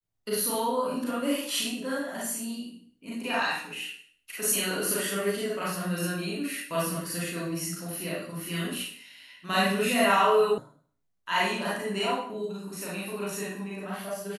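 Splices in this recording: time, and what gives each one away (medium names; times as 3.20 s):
10.58 s: sound stops dead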